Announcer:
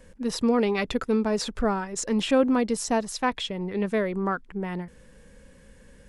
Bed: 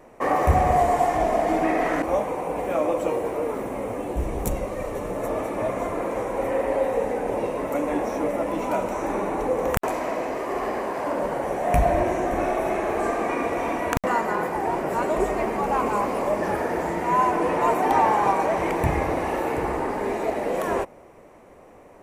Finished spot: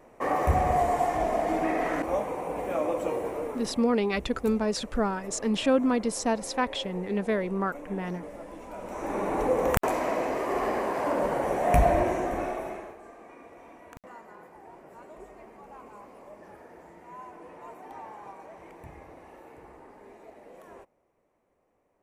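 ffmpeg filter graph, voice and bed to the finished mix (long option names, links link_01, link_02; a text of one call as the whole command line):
ffmpeg -i stem1.wav -i stem2.wav -filter_complex "[0:a]adelay=3350,volume=-2dB[link_01];[1:a]volume=11dB,afade=type=out:start_time=3.27:duration=0.66:silence=0.251189,afade=type=in:start_time=8.76:duration=0.65:silence=0.158489,afade=type=out:start_time=11.82:duration=1.15:silence=0.0707946[link_02];[link_01][link_02]amix=inputs=2:normalize=0" out.wav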